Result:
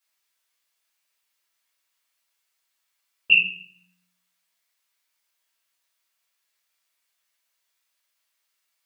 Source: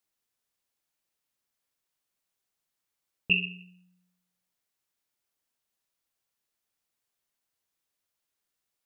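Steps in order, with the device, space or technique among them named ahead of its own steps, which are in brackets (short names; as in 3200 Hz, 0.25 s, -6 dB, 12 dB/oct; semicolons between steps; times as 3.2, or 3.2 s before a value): 3.32–3.72 fifteen-band EQ 160 Hz -10 dB, 400 Hz -6 dB, 2500 Hz -6 dB; shoebox room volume 320 m³, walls furnished, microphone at 5.5 m; filter by subtraction (in parallel: LPF 2100 Hz 12 dB/oct + phase invert)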